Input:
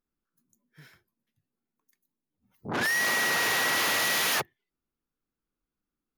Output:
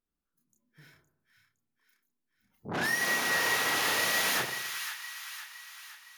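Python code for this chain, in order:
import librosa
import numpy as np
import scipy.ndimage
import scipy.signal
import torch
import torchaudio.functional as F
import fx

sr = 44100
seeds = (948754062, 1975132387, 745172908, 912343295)

y = fx.chorus_voices(x, sr, voices=2, hz=0.33, base_ms=30, depth_ms=1.7, mix_pct=40)
y = fx.echo_split(y, sr, split_hz=1100.0, low_ms=83, high_ms=513, feedback_pct=52, wet_db=-8.0)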